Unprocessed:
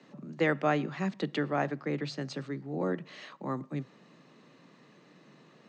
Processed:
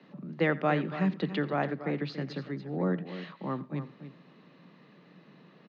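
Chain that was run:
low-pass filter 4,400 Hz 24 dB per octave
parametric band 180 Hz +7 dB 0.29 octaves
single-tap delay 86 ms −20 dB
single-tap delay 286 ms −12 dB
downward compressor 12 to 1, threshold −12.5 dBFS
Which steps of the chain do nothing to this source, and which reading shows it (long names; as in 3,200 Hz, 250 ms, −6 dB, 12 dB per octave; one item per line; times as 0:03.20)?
downward compressor, threshold −12.5 dBFS: peak of its input −14.0 dBFS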